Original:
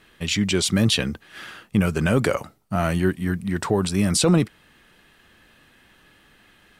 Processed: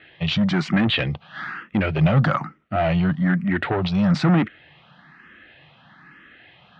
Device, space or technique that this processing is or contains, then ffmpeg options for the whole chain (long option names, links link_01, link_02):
barber-pole phaser into a guitar amplifier: -filter_complex "[0:a]asplit=2[link_01][link_02];[link_02]afreqshift=1.1[link_03];[link_01][link_03]amix=inputs=2:normalize=1,asoftclip=type=tanh:threshold=-22dB,highpass=100,equalizer=frequency=150:width_type=q:width=4:gain=9,equalizer=frequency=430:width_type=q:width=4:gain=-7,equalizer=frequency=740:width_type=q:width=4:gain=4,equalizer=frequency=1300:width_type=q:width=4:gain=4,equalizer=frequency=1900:width_type=q:width=4:gain=5,lowpass=frequency=3600:width=0.5412,lowpass=frequency=3600:width=1.3066,volume=7dB"